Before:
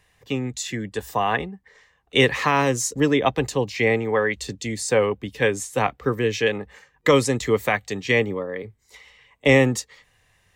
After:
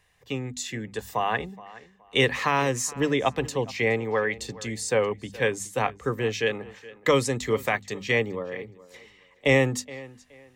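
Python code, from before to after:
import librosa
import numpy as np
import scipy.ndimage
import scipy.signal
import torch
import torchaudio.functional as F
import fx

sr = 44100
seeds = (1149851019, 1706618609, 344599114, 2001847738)

p1 = fx.peak_eq(x, sr, hz=300.0, db=-2.5, octaves=0.77)
p2 = fx.hum_notches(p1, sr, base_hz=50, count=5)
p3 = p2 + fx.echo_tape(p2, sr, ms=421, feedback_pct=27, wet_db=-18.5, lp_hz=4400.0, drive_db=1.0, wow_cents=7, dry=0)
y = F.gain(torch.from_numpy(p3), -3.5).numpy()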